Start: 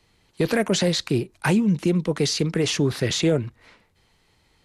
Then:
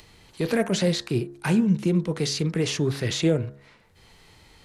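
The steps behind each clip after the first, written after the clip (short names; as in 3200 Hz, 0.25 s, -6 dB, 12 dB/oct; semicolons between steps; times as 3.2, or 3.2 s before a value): harmonic-percussive split percussive -5 dB; de-hum 69.5 Hz, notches 27; upward compressor, threshold -41 dBFS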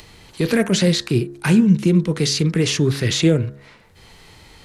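dynamic EQ 730 Hz, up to -7 dB, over -41 dBFS, Q 1.2; gain +7.5 dB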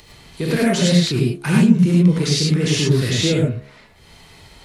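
non-linear reverb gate 0.13 s rising, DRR -4 dB; gain -4.5 dB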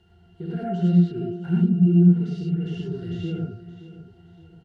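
in parallel at -6.5 dB: requantised 6-bit, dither triangular; on the sum: octave resonator F, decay 0.13 s; feedback echo 0.571 s, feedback 40%, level -15 dB; gain -4 dB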